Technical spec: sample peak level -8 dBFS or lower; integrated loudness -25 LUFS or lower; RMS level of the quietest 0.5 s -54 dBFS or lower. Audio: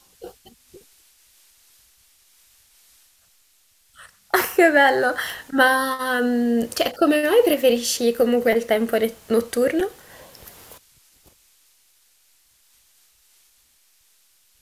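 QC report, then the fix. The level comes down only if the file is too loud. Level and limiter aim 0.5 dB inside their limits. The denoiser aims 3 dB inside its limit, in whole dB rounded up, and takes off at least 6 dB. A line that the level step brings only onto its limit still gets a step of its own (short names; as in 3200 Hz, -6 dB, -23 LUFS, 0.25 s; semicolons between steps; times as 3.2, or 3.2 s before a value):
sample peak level -3.0 dBFS: fail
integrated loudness -19.5 LUFS: fail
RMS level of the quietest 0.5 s -60 dBFS: OK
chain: gain -6 dB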